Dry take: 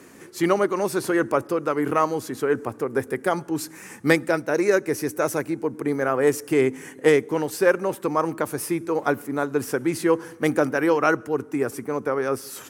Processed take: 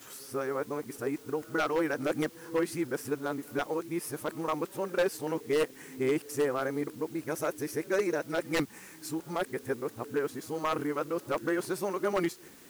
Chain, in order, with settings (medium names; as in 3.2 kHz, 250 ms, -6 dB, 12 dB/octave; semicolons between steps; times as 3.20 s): reverse the whole clip; word length cut 8-bit, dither triangular; wavefolder -11.5 dBFS; trim -8.5 dB